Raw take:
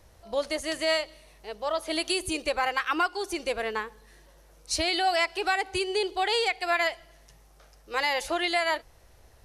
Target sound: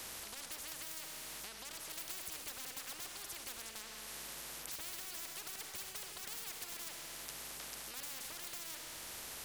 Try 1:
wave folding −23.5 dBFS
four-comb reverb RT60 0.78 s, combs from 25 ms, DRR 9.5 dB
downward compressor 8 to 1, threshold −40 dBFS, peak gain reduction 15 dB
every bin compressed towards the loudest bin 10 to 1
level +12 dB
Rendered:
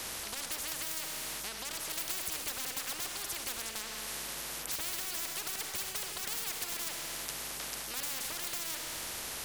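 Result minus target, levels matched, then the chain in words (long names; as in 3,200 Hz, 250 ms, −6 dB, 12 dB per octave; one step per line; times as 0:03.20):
downward compressor: peak gain reduction −9.5 dB
wave folding −23.5 dBFS
four-comb reverb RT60 0.78 s, combs from 25 ms, DRR 9.5 dB
downward compressor 8 to 1, threshold −51 dBFS, peak gain reduction 24.5 dB
every bin compressed towards the loudest bin 10 to 1
level +12 dB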